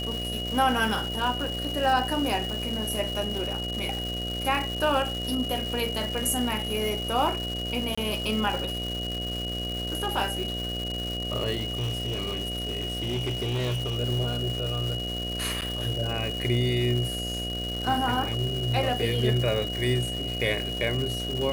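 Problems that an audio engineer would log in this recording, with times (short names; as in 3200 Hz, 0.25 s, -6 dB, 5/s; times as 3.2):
buzz 60 Hz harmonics 12 -34 dBFS
crackle 520/s -31 dBFS
tone 2900 Hz -32 dBFS
7.95–7.97 gap 25 ms
11.57–13.98 clipped -24.5 dBFS
15.61–15.62 gap 8.9 ms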